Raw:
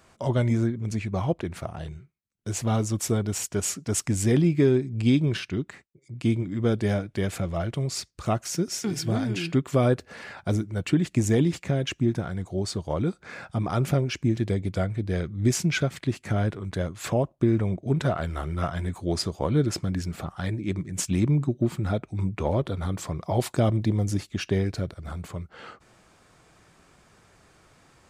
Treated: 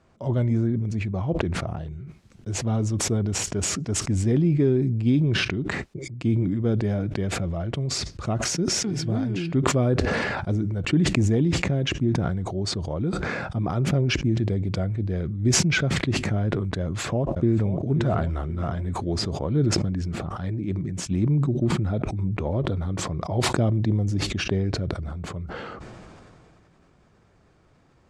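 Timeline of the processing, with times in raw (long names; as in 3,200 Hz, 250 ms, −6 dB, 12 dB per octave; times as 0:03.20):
0:16.83–0:17.70: delay throw 530 ms, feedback 55%, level −13 dB
whole clip: low-pass filter 6,500 Hz 12 dB per octave; tilt shelving filter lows +5 dB, about 770 Hz; level that may fall only so fast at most 21 dB per second; level −4.5 dB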